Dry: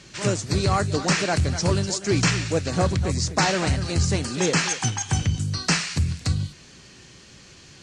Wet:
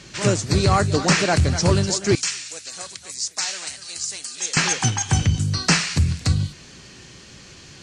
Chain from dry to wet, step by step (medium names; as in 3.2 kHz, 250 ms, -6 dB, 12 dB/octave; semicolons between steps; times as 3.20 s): 2.15–4.57 s: differentiator; trim +4 dB